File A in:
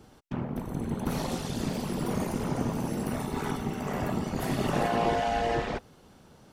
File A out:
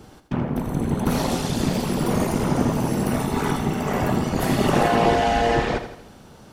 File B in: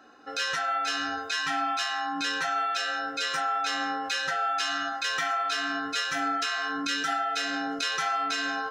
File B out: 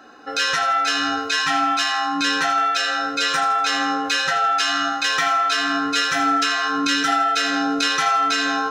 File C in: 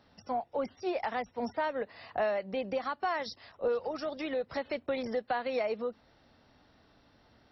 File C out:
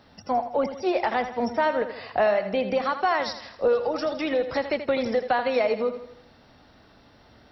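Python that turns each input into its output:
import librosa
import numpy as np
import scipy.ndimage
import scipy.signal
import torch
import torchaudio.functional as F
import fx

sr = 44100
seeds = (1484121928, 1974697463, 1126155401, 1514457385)

y = fx.echo_feedback(x, sr, ms=81, feedback_pct=48, wet_db=-10.5)
y = y * 10.0 ** (8.5 / 20.0)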